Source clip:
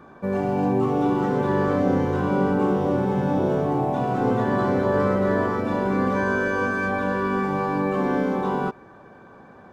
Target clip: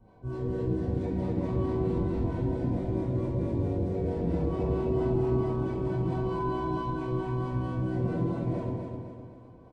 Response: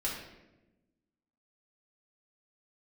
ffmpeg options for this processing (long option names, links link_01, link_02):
-filter_complex "[0:a]bass=frequency=250:gain=2,treble=frequency=4000:gain=4,asetrate=28595,aresample=44100,atempo=1.54221,acrossover=split=450[link_01][link_02];[link_01]aeval=exprs='val(0)*(1-0.7/2+0.7/2*cos(2*PI*4.5*n/s))':channel_layout=same[link_03];[link_02]aeval=exprs='val(0)*(1-0.7/2-0.7/2*cos(2*PI*4.5*n/s))':channel_layout=same[link_04];[link_03][link_04]amix=inputs=2:normalize=0,aecho=1:1:255|510|765|1020|1275|1530:0.531|0.244|0.112|0.0517|0.0238|0.0109[link_05];[1:a]atrim=start_sample=2205,asetrate=66150,aresample=44100[link_06];[link_05][link_06]afir=irnorm=-1:irlink=0,volume=-7.5dB"